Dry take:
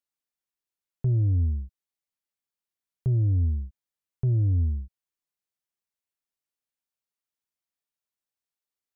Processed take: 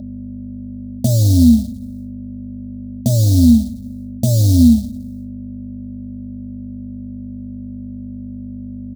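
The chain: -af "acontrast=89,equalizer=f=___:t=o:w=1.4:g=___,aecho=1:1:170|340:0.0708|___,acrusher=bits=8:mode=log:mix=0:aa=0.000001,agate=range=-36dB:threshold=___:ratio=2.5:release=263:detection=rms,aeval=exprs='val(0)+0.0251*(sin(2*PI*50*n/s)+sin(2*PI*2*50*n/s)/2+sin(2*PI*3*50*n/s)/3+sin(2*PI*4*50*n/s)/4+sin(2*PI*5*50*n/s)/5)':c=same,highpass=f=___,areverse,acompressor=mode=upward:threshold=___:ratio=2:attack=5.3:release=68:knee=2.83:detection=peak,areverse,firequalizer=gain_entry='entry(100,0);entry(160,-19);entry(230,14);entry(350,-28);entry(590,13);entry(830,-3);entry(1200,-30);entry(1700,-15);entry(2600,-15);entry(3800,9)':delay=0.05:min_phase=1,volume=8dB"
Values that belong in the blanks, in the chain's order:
260, 9.5, 0.0241, -43dB, 130, -32dB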